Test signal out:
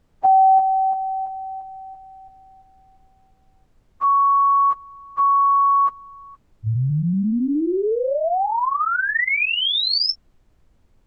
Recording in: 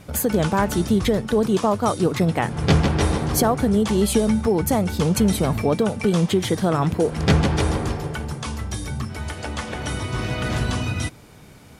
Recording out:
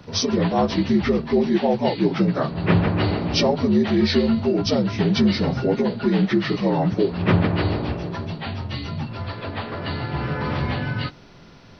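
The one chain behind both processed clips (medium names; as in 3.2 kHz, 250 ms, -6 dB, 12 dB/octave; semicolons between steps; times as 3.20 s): frequency axis rescaled in octaves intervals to 78%; added noise brown -58 dBFS; trim +1.5 dB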